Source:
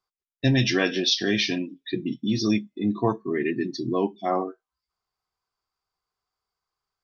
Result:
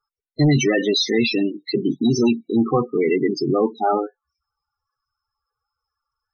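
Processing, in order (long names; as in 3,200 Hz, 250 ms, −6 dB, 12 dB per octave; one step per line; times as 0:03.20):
speed change +11%
soft clipping −19 dBFS, distortion −13 dB
spectral peaks only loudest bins 16
level +9 dB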